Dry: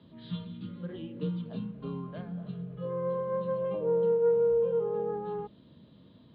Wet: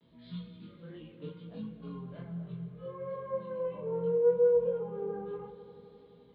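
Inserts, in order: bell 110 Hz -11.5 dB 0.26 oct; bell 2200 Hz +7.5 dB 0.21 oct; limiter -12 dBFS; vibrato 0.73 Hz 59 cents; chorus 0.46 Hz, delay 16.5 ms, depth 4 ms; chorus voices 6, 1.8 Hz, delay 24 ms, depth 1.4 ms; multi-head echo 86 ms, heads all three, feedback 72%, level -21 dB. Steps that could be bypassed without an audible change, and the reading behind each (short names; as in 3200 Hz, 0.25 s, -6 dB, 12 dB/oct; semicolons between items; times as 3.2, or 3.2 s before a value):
limiter -12 dBFS: input peak -18.5 dBFS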